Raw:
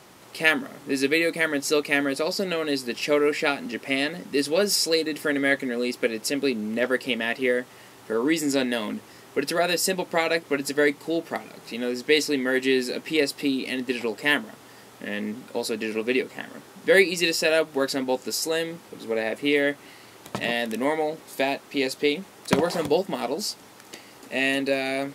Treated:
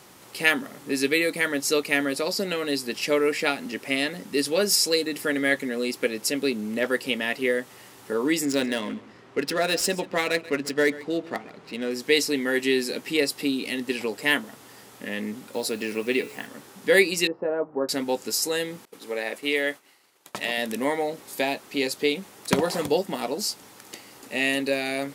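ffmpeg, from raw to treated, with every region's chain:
-filter_complex "[0:a]asettb=1/sr,asplit=3[a][b][c];[a]atrim=end=8.454[d];[b]atrim=start=8.45:end=11.91,asetpts=PTS-STARTPTS,afade=t=in:d=0.004:c=qsin,afade=t=out:st=3.456:d=0.004:c=qsin,bandreject=f=840:w=16,adynamicsmooth=sensitivity=5.5:basefreq=2.8k,aecho=1:1:135:0.126,atrim=end_sample=152586[e];[c]atrim=start=11.906[f];[d][e]acrossfade=d=0.004:c1=hsin:c2=qsin[g];[g][f]acrossfade=d=0.004:c1=qsin:c2=hsin,asettb=1/sr,asplit=3[h][i][j];[h]atrim=end=15.534[k];[i]atrim=start=15.53:end=16.47,asetpts=PTS-STARTPTS,afade=t=in:d=0.004:c=qsin,afade=t=out:st=0.936:d=0.004:c=qsin,bandreject=f=143:t=h:w=4,bandreject=f=286:t=h:w=4,bandreject=f=429:t=h:w=4,bandreject=f=572:t=h:w=4,bandreject=f=715:t=h:w=4,bandreject=f=858:t=h:w=4,bandreject=f=1.001k:t=h:w=4,bandreject=f=1.144k:t=h:w=4,bandreject=f=1.287k:t=h:w=4,bandreject=f=1.43k:t=h:w=4,bandreject=f=1.573k:t=h:w=4,bandreject=f=1.716k:t=h:w=4,bandreject=f=1.859k:t=h:w=4,bandreject=f=2.002k:t=h:w=4,bandreject=f=2.145k:t=h:w=4,bandreject=f=2.288k:t=h:w=4,bandreject=f=2.431k:t=h:w=4,bandreject=f=2.574k:t=h:w=4,bandreject=f=2.717k:t=h:w=4,bandreject=f=2.86k:t=h:w=4,bandreject=f=3.003k:t=h:w=4,bandreject=f=3.146k:t=h:w=4,bandreject=f=3.289k:t=h:w=4,bandreject=f=3.432k:t=h:w=4,bandreject=f=3.575k:t=h:w=4,bandreject=f=3.718k:t=h:w=4,bandreject=f=3.861k:t=h:w=4,bandreject=f=4.004k:t=h:w=4,bandreject=f=4.147k:t=h:w=4,bandreject=f=4.29k:t=h:w=4,bandreject=f=4.433k:t=h:w=4,bandreject=f=4.576k:t=h:w=4,bandreject=f=4.719k:t=h:w=4,acrusher=bits=7:mix=0:aa=0.5[l];[j]atrim=start=16.466[m];[k][l]acrossfade=d=0.004:c1=hsin:c2=qsin[n];[n][m]acrossfade=d=0.004:c1=qsin:c2=hsin,asettb=1/sr,asplit=3[o][p][q];[o]atrim=end=17.274[r];[p]atrim=start=17.27:end=17.89,asetpts=PTS-STARTPTS,afade=t=in:d=0.004:c=qsin,afade=t=out:st=0.616:d=0.004:c=qsin,lowpass=f=1.1k:w=0.5412,lowpass=f=1.1k:w=1.3066,lowshelf=f=120:g=-11[s];[q]atrim=start=17.886[t];[r][s]acrossfade=d=0.004:c1=hsin:c2=qsin[u];[u][t]acrossfade=d=0.004:c1=qsin:c2=hsin,asettb=1/sr,asplit=3[v][w][x];[v]atrim=end=18.854[y];[w]atrim=start=18.85:end=20.58,asetpts=PTS-STARTPTS,afade=t=in:d=0.004:c=qsin,afade=t=out:st=1.726:d=0.004:c=qsin,agate=range=-33dB:threshold=-39dB:ratio=3:release=100:detection=peak,highpass=f=470:p=1[z];[x]atrim=start=20.576[aa];[y][z]acrossfade=d=0.004:c1=hsin:c2=qsin[ab];[ab][aa]acrossfade=d=0.004:c1=qsin:c2=hsin,highshelf=f=6.3k:g=6,bandreject=f=650:w=20,volume=-1dB"

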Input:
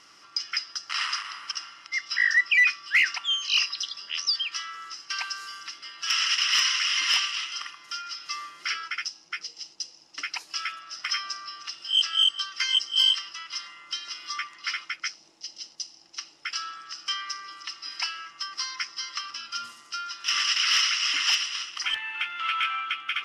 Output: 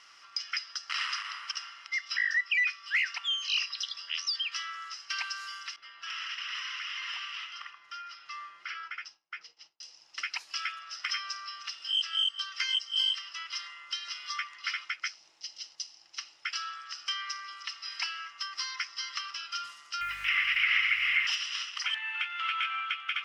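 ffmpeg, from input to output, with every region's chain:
-filter_complex "[0:a]asettb=1/sr,asplit=3[a][b][c];[a]atrim=end=5.764[d];[b]atrim=start=5.76:end=9.83,asetpts=PTS-STARTPTS,afade=t=in:d=0.004:c=qsin,afade=t=out:st=4.066:d=0.004:c=qsin,lowpass=f=1.3k:p=1,agate=range=-33dB:threshold=-54dB:ratio=3:release=100:detection=peak,acompressor=threshold=-34dB:ratio=3:attack=3.2:release=140:knee=1:detection=peak[e];[c]atrim=start=9.826[f];[d][e]acrossfade=d=0.004:c1=hsin:c2=qsin[g];[g][f]acrossfade=d=0.004:c1=qsin:c2=hsin,asettb=1/sr,asplit=3[h][i][j];[h]atrim=end=20.014[k];[i]atrim=start=20.01:end=21.27,asetpts=PTS-STARTPTS,afade=t=in:d=0.004:c=qsin,afade=t=out:st=1.256:d=0.004:c=qsin,lowpass=f=2.2k:t=q:w=7.4,acrusher=bits=6:mix=0:aa=0.5,aeval=exprs='val(0)+0.00562*(sin(2*PI*50*n/s)+sin(2*PI*2*50*n/s)/2+sin(2*PI*3*50*n/s)/3+sin(2*PI*4*50*n/s)/4+sin(2*PI*5*50*n/s)/5)':c=same[l];[j]atrim=start=21.266[m];[k][l]acrossfade=d=0.004:c1=hsin:c2=qsin[n];[n][m]acrossfade=d=0.004:c1=qsin:c2=hsin,equalizer=f=2.2k:w=0.37:g=9.5,acompressor=threshold=-22dB:ratio=2,equalizer=f=250:w=1:g=-9.5,volume=-9dB"

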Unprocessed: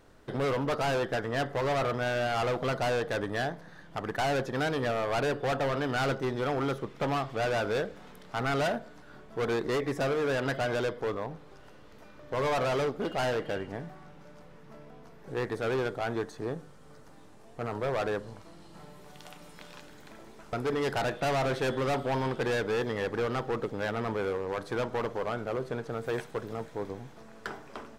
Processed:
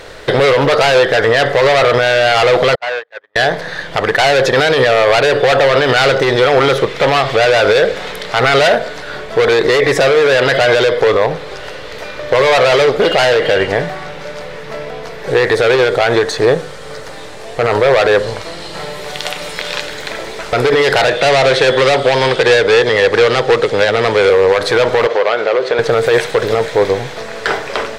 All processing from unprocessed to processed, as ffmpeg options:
-filter_complex "[0:a]asettb=1/sr,asplit=3[a][b][c];[a]atrim=end=2.754[d];[b]atrim=start=2.75:end=3.36,asetpts=PTS-STARTPTS,afade=t=in:d=0.004:c=qsin,afade=t=out:st=0.606:d=0.004:c=qsin,agate=range=-46dB:threshold=-27dB:ratio=16:release=100:detection=peak,bandpass=f=1.4k:t=q:w=0.94[e];[c]atrim=start=3.356[f];[d][e]acrossfade=d=0.004:c1=hsin:c2=qsin[g];[g][f]acrossfade=d=0.004:c1=qsin:c2=hsin,asettb=1/sr,asplit=3[h][i][j];[h]atrim=end=21.074[k];[i]atrim=start=21.07:end=24.3,asetpts=PTS-STARTPTS,afade=t=in:d=0.004:c=qsin,afade=t=out:st=3.226:d=0.004:c=qsin,lowpass=f=11k:w=0.5412,lowpass=f=11k:w=1.3066,acrossover=split=93|690|2800[l][m][n][o];[l]acompressor=threshold=-55dB:ratio=3[p];[m]acompressor=threshold=-36dB:ratio=3[q];[n]acompressor=threshold=-43dB:ratio=3[r];[o]acompressor=threshold=-49dB:ratio=3[s];[p][q][r][s]amix=inputs=4:normalize=0[t];[j]atrim=start=24.296[u];[k][t]acrossfade=d=0.004:c1=hsin:c2=qsin[v];[v][u]acrossfade=d=0.004:c1=qsin:c2=hsin,asettb=1/sr,asplit=3[w][x][y];[w]atrim=end=25.074[z];[x]atrim=start=25.07:end=25.79,asetpts=PTS-STARTPTS,afade=t=in:d=0.004:c=qsin,afade=t=out:st=0.716:d=0.004:c=qsin,highpass=330,lowpass=5.2k,acompressor=threshold=-38dB:ratio=2.5:attack=3.2:release=140:knee=1:detection=peak[aa];[y]atrim=start=25.786[ab];[z][aa]acrossfade=d=0.004:c1=hsin:c2=qsin[ac];[ac][ab]acrossfade=d=0.004:c1=qsin:c2=hsin,equalizer=f=250:t=o:w=1:g=-8,equalizer=f=500:t=o:w=1:g=10,equalizer=f=2k:t=o:w=1:g=9,equalizer=f=4k:t=o:w=1:g=10,equalizer=f=8k:t=o:w=1:g=4,alimiter=level_in=21dB:limit=-1dB:release=50:level=0:latency=1,volume=-1dB"

